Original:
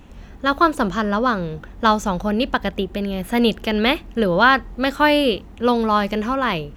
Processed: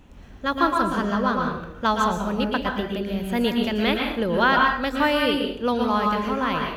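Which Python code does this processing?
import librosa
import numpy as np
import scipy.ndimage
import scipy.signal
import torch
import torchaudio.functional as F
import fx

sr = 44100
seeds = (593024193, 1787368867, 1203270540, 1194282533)

y = fx.rev_plate(x, sr, seeds[0], rt60_s=0.66, hf_ratio=0.75, predelay_ms=105, drr_db=1.0)
y = F.gain(torch.from_numpy(y), -6.0).numpy()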